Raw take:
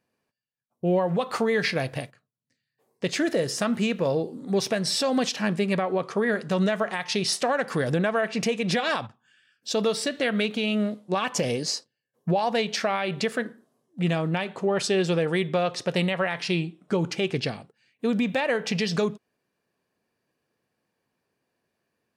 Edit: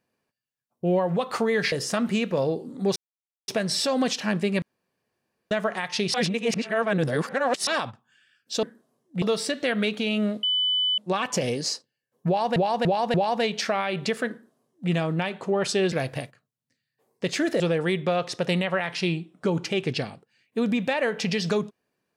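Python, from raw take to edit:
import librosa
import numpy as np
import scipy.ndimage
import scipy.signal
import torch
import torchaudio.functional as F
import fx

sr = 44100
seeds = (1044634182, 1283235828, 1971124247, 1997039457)

y = fx.edit(x, sr, fx.move(start_s=1.72, length_s=1.68, to_s=15.07),
    fx.insert_silence(at_s=4.64, length_s=0.52),
    fx.room_tone_fill(start_s=5.78, length_s=0.89),
    fx.reverse_span(start_s=7.3, length_s=1.53),
    fx.insert_tone(at_s=11.0, length_s=0.55, hz=3000.0, db=-20.5),
    fx.repeat(start_s=12.29, length_s=0.29, count=4),
    fx.duplicate(start_s=13.46, length_s=0.59, to_s=9.79), tone=tone)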